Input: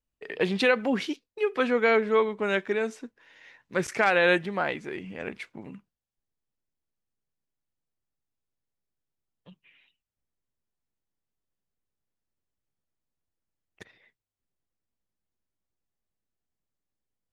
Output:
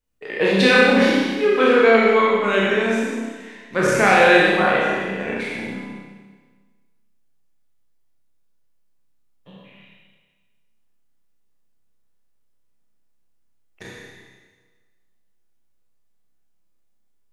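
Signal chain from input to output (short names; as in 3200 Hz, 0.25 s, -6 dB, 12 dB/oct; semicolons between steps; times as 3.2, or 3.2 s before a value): spectral trails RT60 0.81 s; flutter echo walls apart 5.3 m, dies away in 0.24 s; Schroeder reverb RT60 1.4 s, combs from 31 ms, DRR -1 dB; gain +3 dB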